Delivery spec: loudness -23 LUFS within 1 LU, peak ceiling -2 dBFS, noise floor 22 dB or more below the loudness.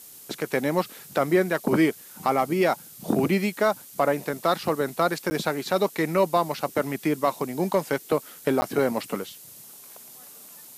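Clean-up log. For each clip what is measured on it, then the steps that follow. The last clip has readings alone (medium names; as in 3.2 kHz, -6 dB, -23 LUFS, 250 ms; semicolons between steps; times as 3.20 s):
dropouts 2; longest dropout 10 ms; noise floor -46 dBFS; noise floor target -48 dBFS; loudness -25.5 LUFS; peak level -10.5 dBFS; loudness target -23.0 LUFS
-> interpolate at 5.30/8.61 s, 10 ms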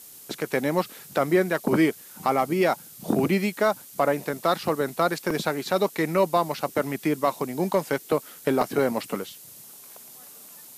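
dropouts 0; noise floor -46 dBFS; noise floor target -48 dBFS
-> noise print and reduce 6 dB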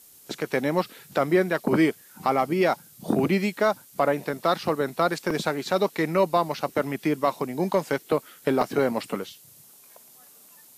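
noise floor -52 dBFS; loudness -25.5 LUFS; peak level -10.0 dBFS; loudness target -23.0 LUFS
-> trim +2.5 dB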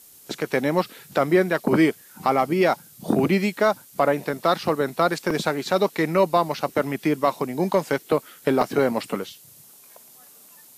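loudness -23.0 LUFS; peak level -7.5 dBFS; noise floor -50 dBFS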